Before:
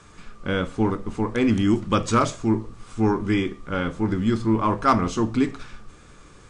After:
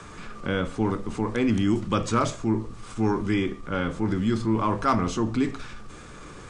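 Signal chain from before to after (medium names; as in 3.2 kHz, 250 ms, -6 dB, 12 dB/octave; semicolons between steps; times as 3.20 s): transient shaper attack -2 dB, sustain +3 dB; three bands compressed up and down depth 40%; trim -2.5 dB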